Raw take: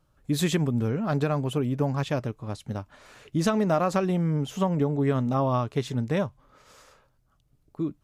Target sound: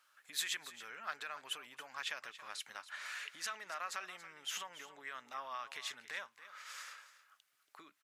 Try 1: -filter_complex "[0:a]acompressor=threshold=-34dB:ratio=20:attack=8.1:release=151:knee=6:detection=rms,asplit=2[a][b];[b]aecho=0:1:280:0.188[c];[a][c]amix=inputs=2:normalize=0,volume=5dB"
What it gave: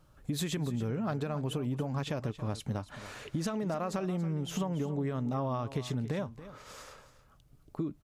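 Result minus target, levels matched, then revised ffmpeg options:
2000 Hz band -13.0 dB
-filter_complex "[0:a]acompressor=threshold=-34dB:ratio=20:attack=8.1:release=151:knee=6:detection=rms,highpass=f=1.7k:t=q:w=1.8,asplit=2[a][b];[b]aecho=0:1:280:0.188[c];[a][c]amix=inputs=2:normalize=0,volume=5dB"

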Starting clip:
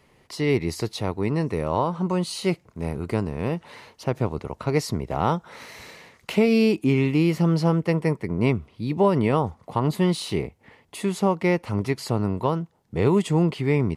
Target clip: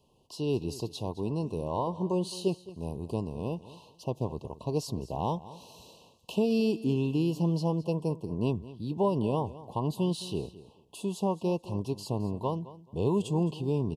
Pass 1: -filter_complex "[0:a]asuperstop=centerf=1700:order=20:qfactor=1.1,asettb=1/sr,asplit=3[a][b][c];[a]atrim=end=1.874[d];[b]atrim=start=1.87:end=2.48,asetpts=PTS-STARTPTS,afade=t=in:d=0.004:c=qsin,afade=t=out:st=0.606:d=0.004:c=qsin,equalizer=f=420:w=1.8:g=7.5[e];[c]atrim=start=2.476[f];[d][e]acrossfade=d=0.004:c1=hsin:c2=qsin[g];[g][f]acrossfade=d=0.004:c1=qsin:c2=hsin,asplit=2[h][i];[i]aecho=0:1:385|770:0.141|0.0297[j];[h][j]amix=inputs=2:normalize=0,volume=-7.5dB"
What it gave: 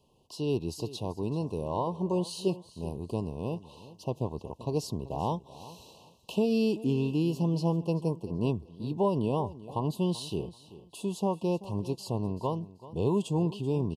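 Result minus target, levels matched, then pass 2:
echo 0.17 s late
-filter_complex "[0:a]asuperstop=centerf=1700:order=20:qfactor=1.1,asettb=1/sr,asplit=3[a][b][c];[a]atrim=end=1.874[d];[b]atrim=start=1.87:end=2.48,asetpts=PTS-STARTPTS,afade=t=in:d=0.004:c=qsin,afade=t=out:st=0.606:d=0.004:c=qsin,equalizer=f=420:w=1.8:g=7.5[e];[c]atrim=start=2.476[f];[d][e]acrossfade=d=0.004:c1=hsin:c2=qsin[g];[g][f]acrossfade=d=0.004:c1=qsin:c2=hsin,asplit=2[h][i];[i]aecho=0:1:215|430:0.141|0.0297[j];[h][j]amix=inputs=2:normalize=0,volume=-7.5dB"

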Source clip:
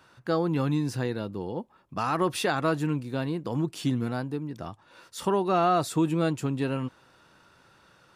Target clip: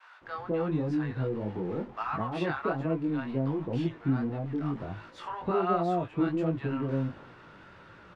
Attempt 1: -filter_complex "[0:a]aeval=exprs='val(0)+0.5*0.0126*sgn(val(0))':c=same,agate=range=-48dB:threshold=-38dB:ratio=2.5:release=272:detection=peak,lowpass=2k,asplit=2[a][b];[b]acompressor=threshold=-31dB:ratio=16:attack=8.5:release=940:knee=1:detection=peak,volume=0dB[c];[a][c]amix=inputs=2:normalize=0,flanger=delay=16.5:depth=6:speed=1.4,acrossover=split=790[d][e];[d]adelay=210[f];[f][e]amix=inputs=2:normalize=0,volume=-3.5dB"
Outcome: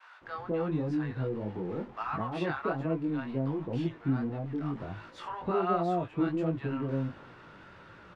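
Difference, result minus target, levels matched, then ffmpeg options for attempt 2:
compressor: peak gain reduction +5.5 dB
-filter_complex "[0:a]aeval=exprs='val(0)+0.5*0.0126*sgn(val(0))':c=same,agate=range=-48dB:threshold=-38dB:ratio=2.5:release=272:detection=peak,lowpass=2k,asplit=2[a][b];[b]acompressor=threshold=-25dB:ratio=16:attack=8.5:release=940:knee=1:detection=peak,volume=0dB[c];[a][c]amix=inputs=2:normalize=0,flanger=delay=16.5:depth=6:speed=1.4,acrossover=split=790[d][e];[d]adelay=210[f];[f][e]amix=inputs=2:normalize=0,volume=-3.5dB"

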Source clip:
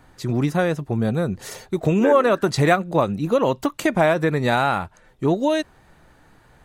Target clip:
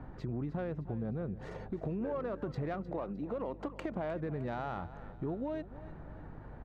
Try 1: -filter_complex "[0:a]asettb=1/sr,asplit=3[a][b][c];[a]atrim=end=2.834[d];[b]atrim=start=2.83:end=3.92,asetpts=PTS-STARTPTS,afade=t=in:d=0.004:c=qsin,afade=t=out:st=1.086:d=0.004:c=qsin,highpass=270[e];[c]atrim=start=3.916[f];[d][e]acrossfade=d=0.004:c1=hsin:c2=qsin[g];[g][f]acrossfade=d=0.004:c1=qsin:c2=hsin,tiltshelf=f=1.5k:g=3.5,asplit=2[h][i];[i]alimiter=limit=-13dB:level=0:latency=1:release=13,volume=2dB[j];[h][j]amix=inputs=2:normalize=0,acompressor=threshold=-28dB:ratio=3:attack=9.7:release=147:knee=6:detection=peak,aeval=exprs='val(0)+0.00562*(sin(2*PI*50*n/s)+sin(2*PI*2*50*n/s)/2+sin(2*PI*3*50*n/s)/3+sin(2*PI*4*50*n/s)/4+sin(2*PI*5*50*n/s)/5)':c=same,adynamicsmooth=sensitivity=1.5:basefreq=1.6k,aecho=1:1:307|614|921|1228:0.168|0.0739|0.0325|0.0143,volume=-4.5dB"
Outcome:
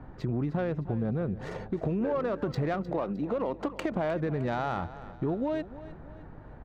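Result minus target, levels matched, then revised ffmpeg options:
compressor: peak gain reduction -7 dB
-filter_complex "[0:a]asettb=1/sr,asplit=3[a][b][c];[a]atrim=end=2.834[d];[b]atrim=start=2.83:end=3.92,asetpts=PTS-STARTPTS,afade=t=in:d=0.004:c=qsin,afade=t=out:st=1.086:d=0.004:c=qsin,highpass=270[e];[c]atrim=start=3.916[f];[d][e]acrossfade=d=0.004:c1=hsin:c2=qsin[g];[g][f]acrossfade=d=0.004:c1=qsin:c2=hsin,tiltshelf=f=1.5k:g=3.5,asplit=2[h][i];[i]alimiter=limit=-13dB:level=0:latency=1:release=13,volume=2dB[j];[h][j]amix=inputs=2:normalize=0,acompressor=threshold=-38.5dB:ratio=3:attack=9.7:release=147:knee=6:detection=peak,aeval=exprs='val(0)+0.00562*(sin(2*PI*50*n/s)+sin(2*PI*2*50*n/s)/2+sin(2*PI*3*50*n/s)/3+sin(2*PI*4*50*n/s)/4+sin(2*PI*5*50*n/s)/5)':c=same,adynamicsmooth=sensitivity=1.5:basefreq=1.6k,aecho=1:1:307|614|921|1228:0.168|0.0739|0.0325|0.0143,volume=-4.5dB"

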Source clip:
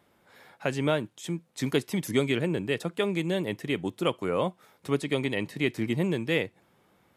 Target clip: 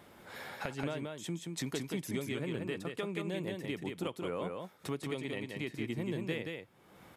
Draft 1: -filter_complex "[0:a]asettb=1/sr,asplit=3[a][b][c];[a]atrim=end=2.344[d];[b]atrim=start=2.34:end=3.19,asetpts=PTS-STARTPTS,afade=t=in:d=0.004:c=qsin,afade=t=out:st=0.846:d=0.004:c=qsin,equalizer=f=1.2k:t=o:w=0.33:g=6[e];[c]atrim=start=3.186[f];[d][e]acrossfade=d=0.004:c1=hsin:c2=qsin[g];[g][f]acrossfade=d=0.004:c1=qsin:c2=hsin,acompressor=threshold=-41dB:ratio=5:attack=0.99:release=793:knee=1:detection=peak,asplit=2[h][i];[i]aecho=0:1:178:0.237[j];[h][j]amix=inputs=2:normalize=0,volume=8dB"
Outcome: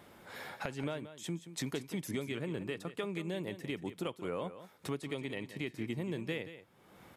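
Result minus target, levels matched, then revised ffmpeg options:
echo-to-direct -8.5 dB
-filter_complex "[0:a]asettb=1/sr,asplit=3[a][b][c];[a]atrim=end=2.344[d];[b]atrim=start=2.34:end=3.19,asetpts=PTS-STARTPTS,afade=t=in:d=0.004:c=qsin,afade=t=out:st=0.846:d=0.004:c=qsin,equalizer=f=1.2k:t=o:w=0.33:g=6[e];[c]atrim=start=3.186[f];[d][e]acrossfade=d=0.004:c1=hsin:c2=qsin[g];[g][f]acrossfade=d=0.004:c1=qsin:c2=hsin,acompressor=threshold=-41dB:ratio=5:attack=0.99:release=793:knee=1:detection=peak,asplit=2[h][i];[i]aecho=0:1:178:0.631[j];[h][j]amix=inputs=2:normalize=0,volume=8dB"

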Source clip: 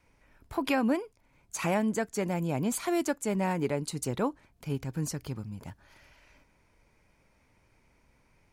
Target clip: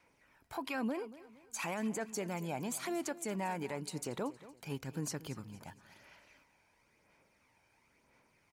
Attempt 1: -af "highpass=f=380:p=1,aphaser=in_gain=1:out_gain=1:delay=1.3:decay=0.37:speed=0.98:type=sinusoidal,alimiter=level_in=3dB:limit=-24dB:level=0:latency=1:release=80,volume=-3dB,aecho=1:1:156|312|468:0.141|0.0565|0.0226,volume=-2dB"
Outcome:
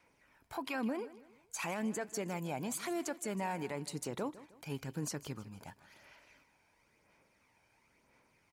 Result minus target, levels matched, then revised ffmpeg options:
echo 76 ms early
-af "highpass=f=380:p=1,aphaser=in_gain=1:out_gain=1:delay=1.3:decay=0.37:speed=0.98:type=sinusoidal,alimiter=level_in=3dB:limit=-24dB:level=0:latency=1:release=80,volume=-3dB,aecho=1:1:232|464|696:0.141|0.0565|0.0226,volume=-2dB"

